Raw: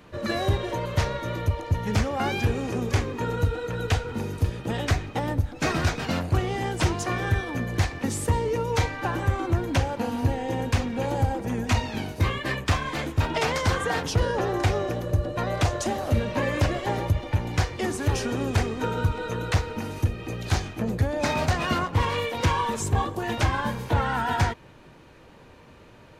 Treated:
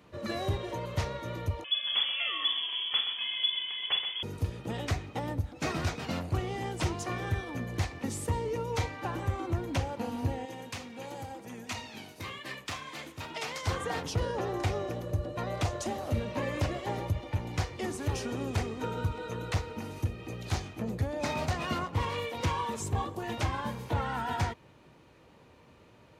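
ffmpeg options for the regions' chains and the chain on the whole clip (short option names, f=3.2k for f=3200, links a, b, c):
-filter_complex "[0:a]asettb=1/sr,asplit=3[a][b][c];[a]atrim=end=1.644[d];[b]atrim=start=1.64:end=4.23,asetpts=PTS-STARTPTS,afade=t=in:d=0.004:c=qsin,afade=t=out:st=2.586:d=0.004:c=qsin,asplit=2[e][f];[f]adelay=48,volume=-9dB[g];[e][g]amix=inputs=2:normalize=0,atrim=end_sample=114219,aecho=1:1:128:0.355,atrim=end_sample=114219,lowpass=f=3k:t=q:w=0.5098,lowpass=f=3k:t=q:w=0.6013,lowpass=f=3k:t=q:w=0.9,lowpass=f=3k:t=q:w=2.563,afreqshift=-3500[h];[c]atrim=start=4.226[i];[d][h]acrossfade=d=0.004:c1=hsin:c2=qsin[j];[j][i]acrossfade=d=0.004:c1=qsin:c2=hsin,asettb=1/sr,asplit=3[k][l][m];[k]atrim=end=10.454[n];[l]atrim=start=10.45:end=13.67,asetpts=PTS-STARTPTS,afade=t=in:d=0.004:c=qsin,afade=t=out:st=3.216:d=0.004:c=qsin,highpass=180,equalizer=f=370:w=0.31:g=-8,aecho=1:1:79:0.133,atrim=end_sample=142002[o];[m]atrim=start=13.666[p];[n][o]acrossfade=d=0.004:c1=hsin:c2=qsin[q];[q][p]acrossfade=d=0.004:c1=qsin:c2=hsin,highpass=54,equalizer=f=1.6k:t=o:w=0.22:g=-5,volume=-7dB"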